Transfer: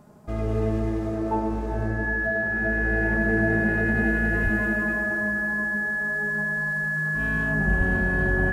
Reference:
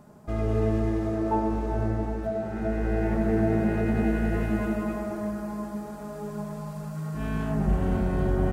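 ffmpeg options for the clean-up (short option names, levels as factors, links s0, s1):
-filter_complex "[0:a]bandreject=f=1700:w=30,asplit=3[s0][s1][s2];[s0]afade=t=out:st=4.43:d=0.02[s3];[s1]highpass=f=140:w=0.5412,highpass=f=140:w=1.3066,afade=t=in:st=4.43:d=0.02,afade=t=out:st=4.55:d=0.02[s4];[s2]afade=t=in:st=4.55:d=0.02[s5];[s3][s4][s5]amix=inputs=3:normalize=0,asplit=3[s6][s7][s8];[s6]afade=t=out:st=7.77:d=0.02[s9];[s7]highpass=f=140:w=0.5412,highpass=f=140:w=1.3066,afade=t=in:st=7.77:d=0.02,afade=t=out:st=7.89:d=0.02[s10];[s8]afade=t=in:st=7.89:d=0.02[s11];[s9][s10][s11]amix=inputs=3:normalize=0"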